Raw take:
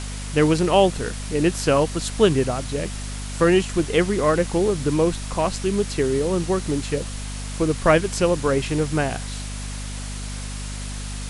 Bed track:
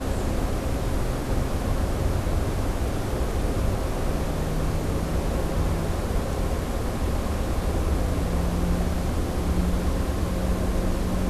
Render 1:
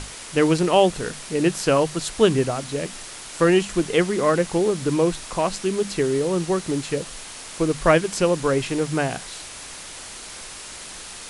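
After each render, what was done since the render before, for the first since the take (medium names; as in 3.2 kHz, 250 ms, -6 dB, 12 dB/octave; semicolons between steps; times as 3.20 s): hum notches 50/100/150/200/250 Hz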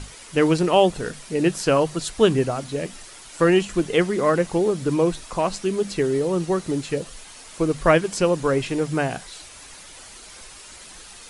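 noise reduction 8 dB, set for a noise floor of -38 dBFS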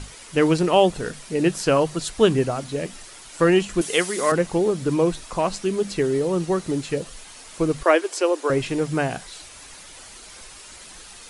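3.81–4.32 s: RIAA curve recording; 7.83–8.50 s: elliptic high-pass 320 Hz, stop band 50 dB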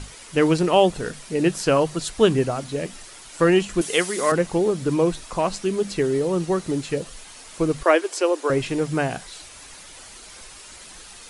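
no audible change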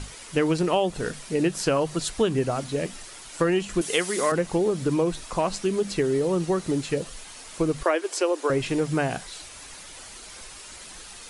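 compression 5:1, threshold -19 dBFS, peak gain reduction 8 dB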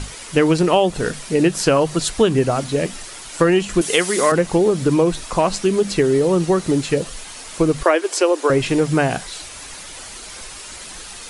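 trim +7.5 dB; peak limiter -2 dBFS, peak gain reduction 1 dB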